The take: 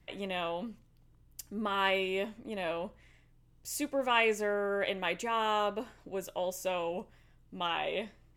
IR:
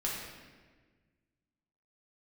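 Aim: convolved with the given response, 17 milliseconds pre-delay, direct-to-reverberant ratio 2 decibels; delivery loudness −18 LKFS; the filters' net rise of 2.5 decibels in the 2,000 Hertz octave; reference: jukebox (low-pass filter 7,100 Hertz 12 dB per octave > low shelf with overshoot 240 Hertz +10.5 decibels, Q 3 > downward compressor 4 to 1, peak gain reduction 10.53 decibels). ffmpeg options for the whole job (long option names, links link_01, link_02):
-filter_complex "[0:a]equalizer=frequency=2000:width_type=o:gain=3.5,asplit=2[link_01][link_02];[1:a]atrim=start_sample=2205,adelay=17[link_03];[link_02][link_03]afir=irnorm=-1:irlink=0,volume=-6.5dB[link_04];[link_01][link_04]amix=inputs=2:normalize=0,lowpass=7100,lowshelf=frequency=240:width_type=q:width=3:gain=10.5,acompressor=threshold=-32dB:ratio=4,volume=17.5dB"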